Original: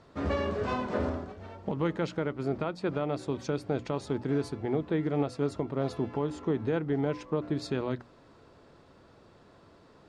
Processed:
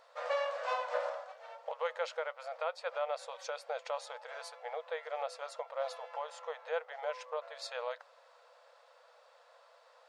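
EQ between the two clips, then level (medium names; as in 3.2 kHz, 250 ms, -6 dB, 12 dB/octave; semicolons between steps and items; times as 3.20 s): brick-wall FIR high-pass 470 Hz; -1.0 dB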